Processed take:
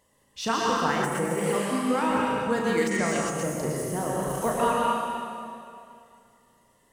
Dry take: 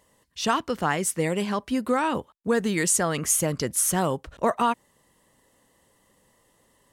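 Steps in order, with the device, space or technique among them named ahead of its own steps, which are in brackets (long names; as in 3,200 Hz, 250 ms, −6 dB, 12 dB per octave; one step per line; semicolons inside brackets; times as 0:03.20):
reverb reduction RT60 1.6 s
tunnel (flutter between parallel walls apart 6.1 metres, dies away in 0.34 s; convolution reverb RT60 2.6 s, pre-delay 103 ms, DRR −4 dB)
0:02.89–0:03.42: low-pass filter 3,500 Hz → 7,800 Hz 12 dB per octave
de-essing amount 55%
0:01.55–0:02.10: high-pass filter 160 Hz
level −4 dB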